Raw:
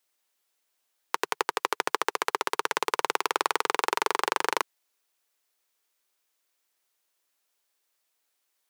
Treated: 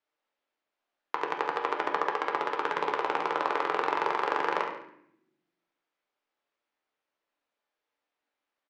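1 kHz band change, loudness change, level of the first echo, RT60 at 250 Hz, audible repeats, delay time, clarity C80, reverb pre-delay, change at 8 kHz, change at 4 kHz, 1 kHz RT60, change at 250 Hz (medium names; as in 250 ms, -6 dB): -0.5 dB, -1.5 dB, -9.5 dB, 1.4 s, 1, 70 ms, 8.5 dB, 7 ms, under -20 dB, -9.0 dB, 0.65 s, +1.0 dB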